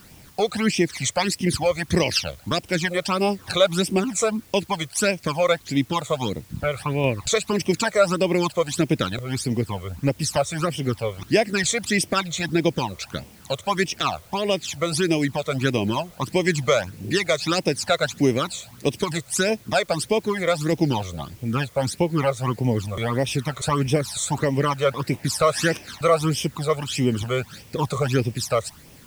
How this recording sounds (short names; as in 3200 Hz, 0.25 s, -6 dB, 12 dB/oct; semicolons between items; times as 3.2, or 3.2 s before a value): phasing stages 12, 1.6 Hz, lowest notch 270–1400 Hz; a quantiser's noise floor 10-bit, dither triangular